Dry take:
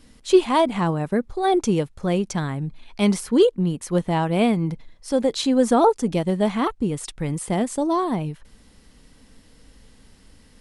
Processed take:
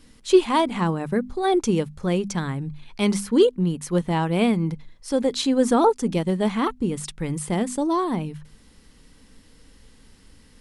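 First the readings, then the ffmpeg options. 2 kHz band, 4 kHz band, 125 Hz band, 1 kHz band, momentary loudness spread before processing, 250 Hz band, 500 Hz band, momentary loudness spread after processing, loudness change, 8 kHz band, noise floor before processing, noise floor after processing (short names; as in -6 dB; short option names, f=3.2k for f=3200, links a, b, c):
0.0 dB, 0.0 dB, -1.0 dB, -1.5 dB, 10 LU, -1.0 dB, -1.0 dB, 11 LU, -1.0 dB, 0.0 dB, -53 dBFS, -53 dBFS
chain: -af "equalizer=f=660:t=o:w=0.47:g=-5,bandreject=f=50:t=h:w=6,bandreject=f=100:t=h:w=6,bandreject=f=150:t=h:w=6,bandreject=f=200:t=h:w=6,bandreject=f=250:t=h:w=6"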